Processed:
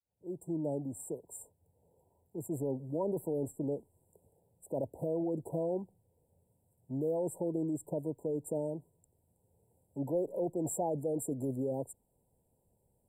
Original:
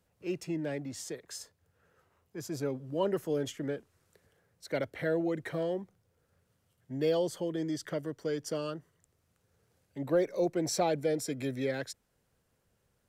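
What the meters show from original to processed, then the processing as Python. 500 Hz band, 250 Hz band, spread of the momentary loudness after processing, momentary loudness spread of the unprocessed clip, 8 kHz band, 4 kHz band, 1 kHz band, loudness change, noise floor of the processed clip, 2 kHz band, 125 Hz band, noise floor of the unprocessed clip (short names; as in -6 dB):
-3.0 dB, -1.5 dB, 11 LU, 14 LU, -3.0 dB, under -40 dB, -4.5 dB, -2.5 dB, -76 dBFS, under -40 dB, -0.5 dB, -76 dBFS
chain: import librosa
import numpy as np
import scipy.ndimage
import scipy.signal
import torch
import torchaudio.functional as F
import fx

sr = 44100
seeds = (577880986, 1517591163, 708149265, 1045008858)

p1 = fx.fade_in_head(x, sr, length_s=0.69)
p2 = fx.over_compress(p1, sr, threshold_db=-33.0, ratio=-0.5)
p3 = p1 + (p2 * librosa.db_to_amplitude(-1.0))
p4 = fx.brickwall_bandstop(p3, sr, low_hz=1000.0, high_hz=7300.0)
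y = p4 * librosa.db_to_amplitude(-6.0)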